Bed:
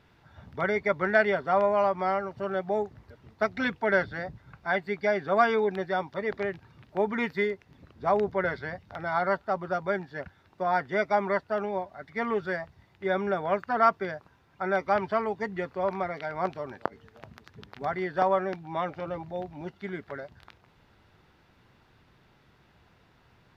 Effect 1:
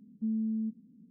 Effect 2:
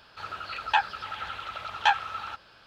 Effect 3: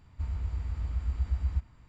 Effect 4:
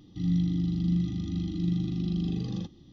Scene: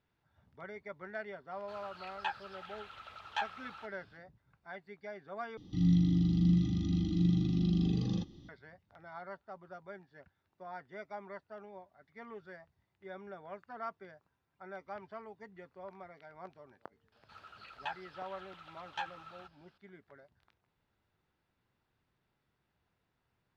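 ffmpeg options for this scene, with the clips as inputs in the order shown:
ffmpeg -i bed.wav -i cue0.wav -i cue1.wav -i cue2.wav -i cue3.wav -filter_complex "[2:a]asplit=2[link_01][link_02];[0:a]volume=-19.5dB,asplit=2[link_03][link_04];[link_03]atrim=end=5.574[link_05];[4:a]atrim=end=2.92,asetpts=PTS-STARTPTS,volume=-0.5dB[link_06];[link_04]atrim=start=8.486[link_07];[link_01]atrim=end=2.66,asetpts=PTS-STARTPTS,volume=-13.5dB,afade=type=in:duration=0.004:curve=hsin,afade=type=out:start_time=2.656:duration=0.004:curve=hsin,adelay=1510[link_08];[link_02]atrim=end=2.66,asetpts=PTS-STARTPTS,volume=-17dB,afade=type=in:duration=0.004:curve=hsin,afade=type=out:start_time=2.656:duration=0.004:curve=hsin,adelay=17120[link_09];[link_05][link_06]acrossfade=duration=0.004:curve1=hsin:curve2=hsin[link_10];[link_10][link_07]acrossfade=duration=0.004:curve1=hsin:curve2=hsin[link_11];[link_11][link_08][link_09]amix=inputs=3:normalize=0" out.wav

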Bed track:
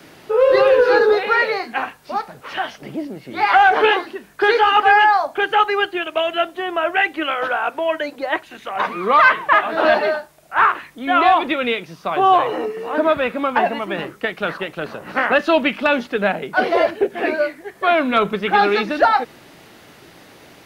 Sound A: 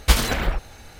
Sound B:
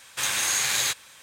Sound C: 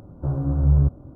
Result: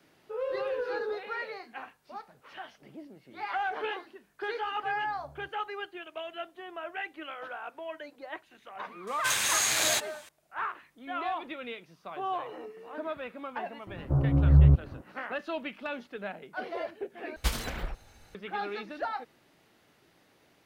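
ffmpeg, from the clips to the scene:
ffmpeg -i bed.wav -i cue0.wav -i cue1.wav -i cue2.wav -filter_complex "[3:a]asplit=2[link_01][link_02];[0:a]volume=-19.5dB[link_03];[link_01]highpass=frequency=1200:poles=1[link_04];[link_03]asplit=2[link_05][link_06];[link_05]atrim=end=17.364[link_07];[1:a]atrim=end=0.99,asetpts=PTS-STARTPTS,volume=-12.5dB[link_08];[link_06]atrim=start=18.346[link_09];[link_04]atrim=end=1.15,asetpts=PTS-STARTPTS,volume=-16dB,afade=type=in:duration=0.004:curve=hsin,afade=type=out:start_time=1.146:duration=0.004:curve=hsin,adelay=4600[link_10];[2:a]atrim=end=1.22,asetpts=PTS-STARTPTS,volume=-2.5dB,afade=type=in:duration=0.004:curve=hsin,afade=type=out:start_time=1.216:duration=0.004:curve=hsin,adelay=9070[link_11];[link_02]atrim=end=1.15,asetpts=PTS-STARTPTS,volume=-1dB,afade=type=in:duration=0.004:curve=hsin,afade=type=out:start_time=1.146:duration=0.004:curve=hsin,adelay=13870[link_12];[link_07][link_08]acrossfade=duration=0.004:curve1=hsin:curve2=hsin[link_13];[link_13][link_09]acrossfade=duration=0.004:curve1=hsin:curve2=hsin[link_14];[link_14][link_10][link_11][link_12]amix=inputs=4:normalize=0" out.wav

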